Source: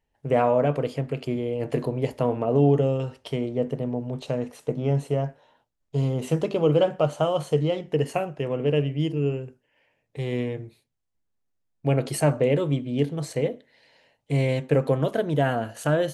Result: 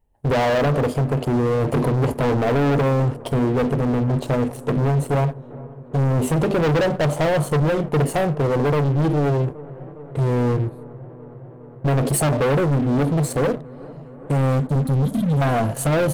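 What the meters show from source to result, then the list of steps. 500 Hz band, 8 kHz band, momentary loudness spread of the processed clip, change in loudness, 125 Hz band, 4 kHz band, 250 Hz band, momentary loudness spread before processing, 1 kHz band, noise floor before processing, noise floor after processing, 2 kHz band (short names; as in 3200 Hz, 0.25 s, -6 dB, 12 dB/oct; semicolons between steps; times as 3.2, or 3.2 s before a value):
+2.5 dB, +9.5 dB, 15 LU, +5.0 dB, +7.0 dB, +3.5 dB, +6.0 dB, 9 LU, +6.0 dB, -75 dBFS, -40 dBFS, +7.0 dB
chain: band shelf 3100 Hz -10.5 dB 2.4 oct; spectral delete 14.61–15.41, 290–3100 Hz; low shelf 92 Hz +9.5 dB; sample leveller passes 2; in parallel at +2 dB: limiter -17 dBFS, peak gain reduction 9 dB; on the sum: soft clip -18 dBFS, distortion -9 dB; on a send: dark delay 0.41 s, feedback 81%, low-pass 1200 Hz, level -20.5 dB; on the sum: gain +1.5 dB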